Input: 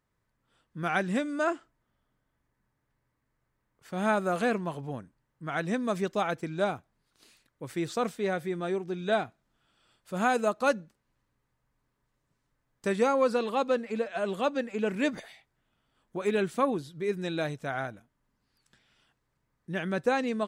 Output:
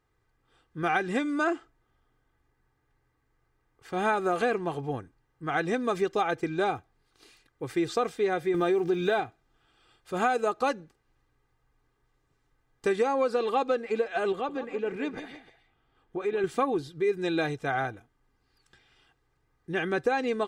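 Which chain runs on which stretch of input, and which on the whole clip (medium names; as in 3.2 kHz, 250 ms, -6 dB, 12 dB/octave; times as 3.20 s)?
8.54–9.20 s: block-companded coder 7-bit + high-pass 41 Hz + level flattener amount 50%
14.32–16.44 s: treble shelf 4.6 kHz -10.5 dB + compression 2:1, threshold -37 dBFS + multi-tap echo 168/303 ms -12/-18.5 dB
whole clip: treble shelf 7.4 kHz -9.5 dB; comb 2.5 ms, depth 61%; compression, threshold -26 dBFS; trim +4 dB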